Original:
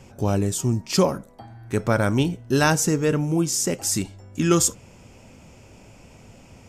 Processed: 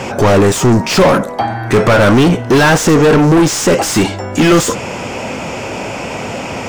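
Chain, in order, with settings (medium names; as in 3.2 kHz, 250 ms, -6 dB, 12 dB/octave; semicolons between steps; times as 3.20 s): overdrive pedal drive 36 dB, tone 1.8 kHz, clips at -6 dBFS; trim +5 dB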